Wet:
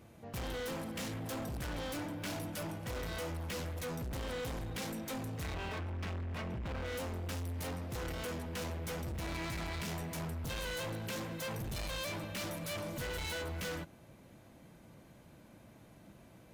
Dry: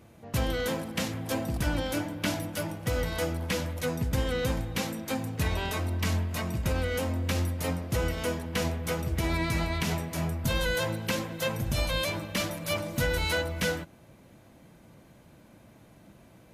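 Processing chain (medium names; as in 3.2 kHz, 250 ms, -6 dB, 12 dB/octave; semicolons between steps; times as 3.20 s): 5.54–6.86 s: Savitzky-Golay filter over 25 samples; overload inside the chain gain 34.5 dB; trim -3 dB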